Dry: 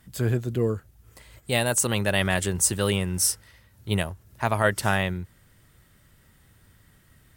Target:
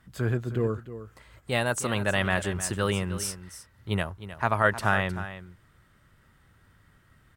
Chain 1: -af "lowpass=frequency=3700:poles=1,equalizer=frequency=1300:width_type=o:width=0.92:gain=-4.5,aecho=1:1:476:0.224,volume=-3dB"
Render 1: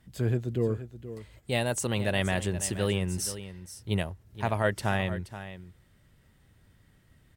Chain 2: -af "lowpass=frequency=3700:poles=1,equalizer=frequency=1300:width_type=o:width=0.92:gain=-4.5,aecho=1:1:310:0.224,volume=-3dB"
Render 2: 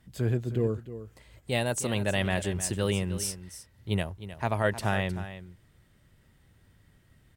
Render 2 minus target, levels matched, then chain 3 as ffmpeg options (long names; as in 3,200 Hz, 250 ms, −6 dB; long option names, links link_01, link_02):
1,000 Hz band −4.0 dB
-af "lowpass=frequency=3700:poles=1,equalizer=frequency=1300:width_type=o:width=0.92:gain=6.5,aecho=1:1:310:0.224,volume=-3dB"